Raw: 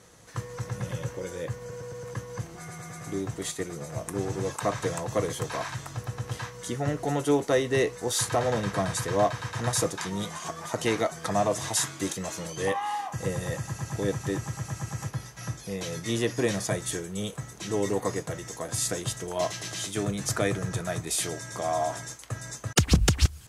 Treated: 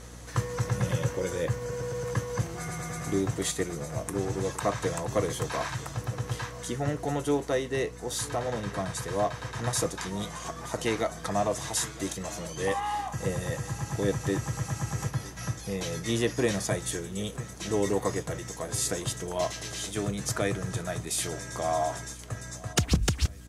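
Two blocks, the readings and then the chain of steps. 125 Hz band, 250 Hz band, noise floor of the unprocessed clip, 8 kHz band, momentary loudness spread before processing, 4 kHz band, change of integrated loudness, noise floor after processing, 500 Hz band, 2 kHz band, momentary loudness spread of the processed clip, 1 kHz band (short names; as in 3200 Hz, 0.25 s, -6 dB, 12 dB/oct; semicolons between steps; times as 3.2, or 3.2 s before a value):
0.0 dB, -1.0 dB, -45 dBFS, -1.5 dB, 11 LU, -2.0 dB, -1.0 dB, -43 dBFS, -1.0 dB, -1.5 dB, 7 LU, -1.5 dB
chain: vocal rider 2 s; hum 60 Hz, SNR 16 dB; feedback echo 0.96 s, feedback 59%, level -20 dB; gain -2 dB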